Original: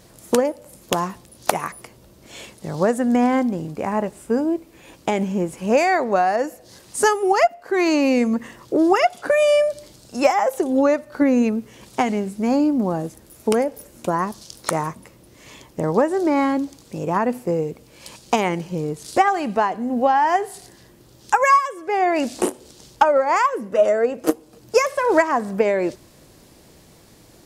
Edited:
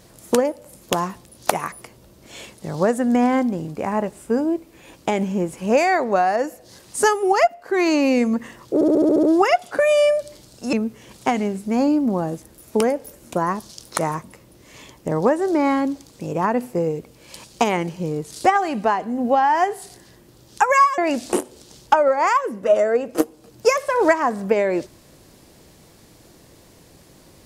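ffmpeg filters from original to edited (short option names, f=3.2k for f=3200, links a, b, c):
-filter_complex "[0:a]asplit=10[a][b][c][d][e][f][g][h][i][j];[a]atrim=end=8.812[k];[b]atrim=start=8.738:end=8.812[l];[c]atrim=start=8.738:end=8.812[m];[d]atrim=start=8.738:end=8.812[n];[e]atrim=start=8.738:end=8.812[o];[f]atrim=start=8.738:end=8.812[p];[g]atrim=start=8.738:end=8.812[q];[h]atrim=start=8.738:end=10.242[r];[i]atrim=start=11.448:end=21.702[s];[j]atrim=start=22.068[t];[k][l]acrossfade=d=0.004:c1=hsin:c2=hsin[u];[u][m]acrossfade=d=0.004:c1=hsin:c2=hsin[v];[v][n]acrossfade=d=0.004:c1=hsin:c2=hsin[w];[w][o]acrossfade=d=0.004:c1=hsin:c2=hsin[x];[x][p]acrossfade=d=0.004:c1=hsin:c2=hsin[y];[y][q]acrossfade=d=0.004:c1=hsin:c2=hsin[z];[z][r]acrossfade=d=0.004:c1=hsin:c2=hsin[aa];[aa][s]acrossfade=d=0.004:c1=hsin:c2=hsin[ab];[ab][t]acrossfade=d=0.004:c1=hsin:c2=hsin"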